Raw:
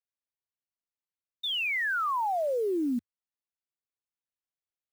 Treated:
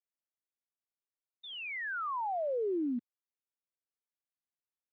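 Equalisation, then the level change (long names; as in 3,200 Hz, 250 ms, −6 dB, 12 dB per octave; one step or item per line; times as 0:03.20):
high-pass filter 260 Hz 12 dB per octave
high-frequency loss of the air 400 metres
low-shelf EQ 470 Hz +5.5 dB
−5.5 dB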